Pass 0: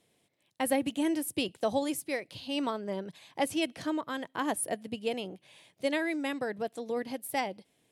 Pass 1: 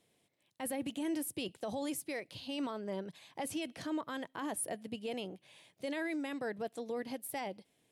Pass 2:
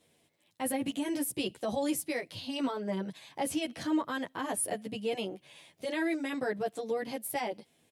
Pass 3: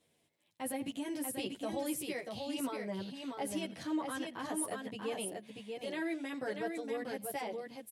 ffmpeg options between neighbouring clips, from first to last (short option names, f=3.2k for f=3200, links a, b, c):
-af "alimiter=level_in=2.5dB:limit=-24dB:level=0:latency=1:release=13,volume=-2.5dB,volume=-3dB"
-filter_complex "[0:a]asplit=2[a][b];[b]adelay=10.3,afreqshift=0.54[c];[a][c]amix=inputs=2:normalize=1,volume=8.5dB"
-af "aecho=1:1:87|638:0.106|0.596,volume=-6dB"